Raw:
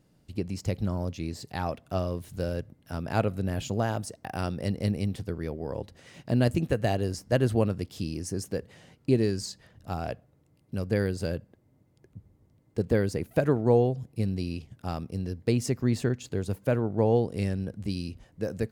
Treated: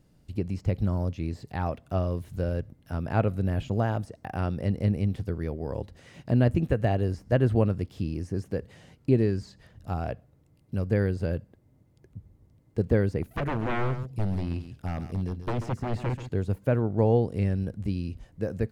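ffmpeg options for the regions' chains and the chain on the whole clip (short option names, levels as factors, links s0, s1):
-filter_complex "[0:a]asettb=1/sr,asplit=3[s0][s1][s2];[s0]atrim=end=13.224[s3];[s1]atrim=start=13.22:end=16.29,asetpts=PTS-STARTPTS,afade=t=in:d=0.004:c=qsin,afade=t=out:st=3.066:d=0.004:c=qsin,aeval=exprs='0.0631*(abs(mod(val(0)/0.0631+3,4)-2)-1)':c=same,aecho=1:1:136:0.266,atrim=end_sample=135387[s4];[s2]atrim=start=16.286[s5];[s3][s4]acrossfade=d=0.004:c1=hsin:c2=qsin[s6];[s6][s5]acrossfade=d=0.004:c1=qsin:c2=hsin,acrossover=split=2900[s7][s8];[s8]acompressor=threshold=0.00141:ratio=4:attack=1:release=60[s9];[s7][s9]amix=inputs=2:normalize=0,lowshelf=f=78:g=10.5"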